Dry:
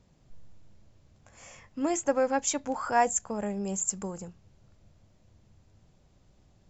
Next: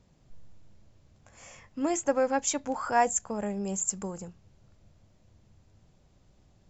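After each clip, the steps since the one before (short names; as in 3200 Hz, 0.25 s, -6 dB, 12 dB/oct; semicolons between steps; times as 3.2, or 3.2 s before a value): nothing audible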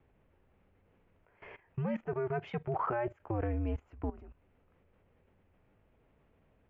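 mistuned SSB -120 Hz 160–2800 Hz; level quantiser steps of 18 dB; gain +3.5 dB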